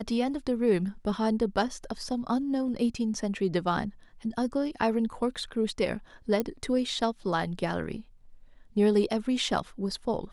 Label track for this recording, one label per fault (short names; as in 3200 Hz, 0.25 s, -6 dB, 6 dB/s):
6.400000	6.400000	pop -15 dBFS